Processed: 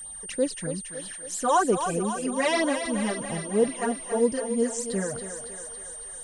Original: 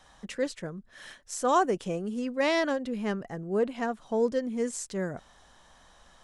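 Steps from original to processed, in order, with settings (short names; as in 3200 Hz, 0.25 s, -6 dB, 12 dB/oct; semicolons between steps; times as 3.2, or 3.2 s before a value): phaser stages 12, 3.1 Hz, lowest notch 220–2100 Hz; thinning echo 0.278 s, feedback 69%, high-pass 350 Hz, level -7.5 dB; whine 8800 Hz -42 dBFS; gain +5 dB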